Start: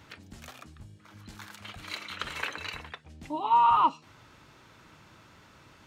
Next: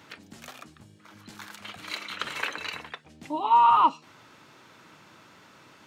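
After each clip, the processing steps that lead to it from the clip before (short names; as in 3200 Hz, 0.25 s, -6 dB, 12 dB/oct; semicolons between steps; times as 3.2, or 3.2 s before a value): HPF 170 Hz 12 dB/oct; gain +3 dB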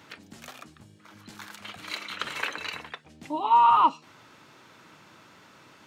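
nothing audible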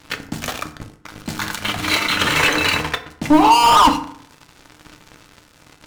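sample leveller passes 5; low shelf 160 Hz +10 dB; FDN reverb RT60 0.62 s, low-frequency decay 1×, high-frequency decay 0.6×, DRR 6 dB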